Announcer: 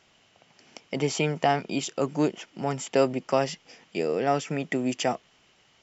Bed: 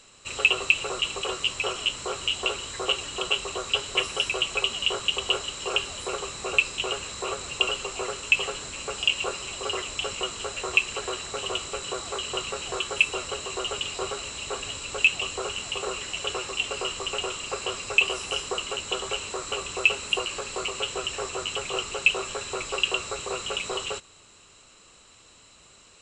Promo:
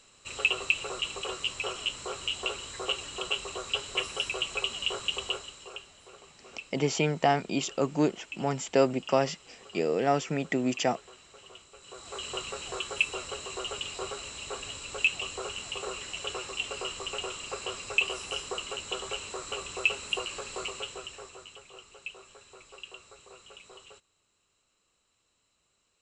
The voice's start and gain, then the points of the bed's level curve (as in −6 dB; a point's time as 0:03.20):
5.80 s, −1.0 dB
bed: 0:05.21 −5.5 dB
0:05.94 −21 dB
0:11.73 −21 dB
0:12.23 −5.5 dB
0:20.66 −5.5 dB
0:21.66 −20.5 dB